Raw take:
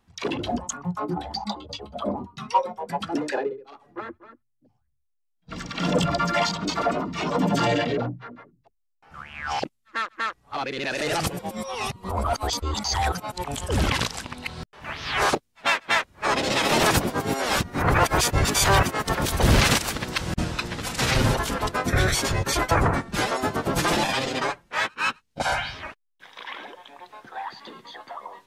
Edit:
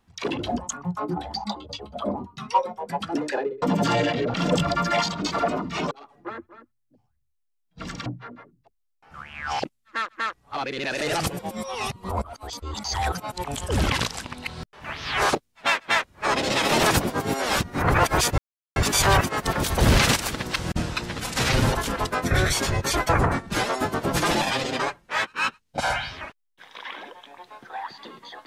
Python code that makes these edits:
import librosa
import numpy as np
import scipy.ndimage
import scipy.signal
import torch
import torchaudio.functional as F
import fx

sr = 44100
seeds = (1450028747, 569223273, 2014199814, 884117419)

y = fx.edit(x, sr, fx.swap(start_s=3.62, length_s=2.15, other_s=7.34, other_length_s=0.72),
    fx.fade_in_from(start_s=12.22, length_s=1.0, floor_db=-21.0),
    fx.insert_silence(at_s=18.38, length_s=0.38), tone=tone)